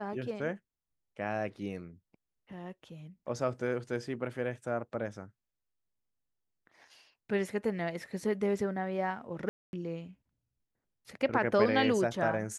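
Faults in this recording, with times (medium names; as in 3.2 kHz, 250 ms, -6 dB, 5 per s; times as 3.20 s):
9.49–9.73 s: dropout 241 ms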